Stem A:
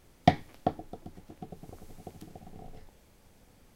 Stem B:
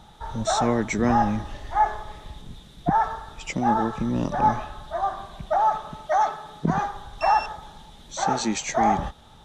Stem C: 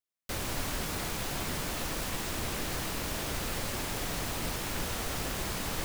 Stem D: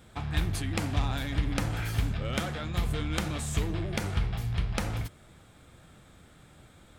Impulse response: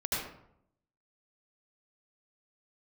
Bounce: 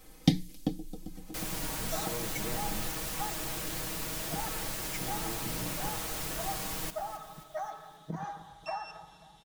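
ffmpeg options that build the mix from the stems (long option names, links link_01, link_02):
-filter_complex "[0:a]acrossover=split=350|3000[link_01][link_02][link_03];[link_02]acompressor=threshold=-57dB:ratio=6[link_04];[link_01][link_04][link_03]amix=inputs=3:normalize=0,bandreject=frequency=60:width_type=h:width=6,bandreject=frequency=120:width_type=h:width=6,bandreject=frequency=180:width_type=h:width=6,aecho=1:1:3.9:0.55,volume=2.5dB[link_05];[1:a]highpass=56,acompressor=threshold=-22dB:ratio=6,adelay=1450,volume=-14dB,asplit=2[link_06][link_07];[link_07]volume=-18dB[link_08];[2:a]adelay=1050,volume=-6dB,asplit=2[link_09][link_10];[link_10]volume=-14dB[link_11];[link_08][link_11]amix=inputs=2:normalize=0,aecho=0:1:267|534|801|1068|1335|1602|1869|2136:1|0.52|0.27|0.141|0.0731|0.038|0.0198|0.0103[link_12];[link_05][link_06][link_09][link_12]amix=inputs=4:normalize=0,highshelf=frequency=6500:gain=7,aecho=1:1:6.3:0.65"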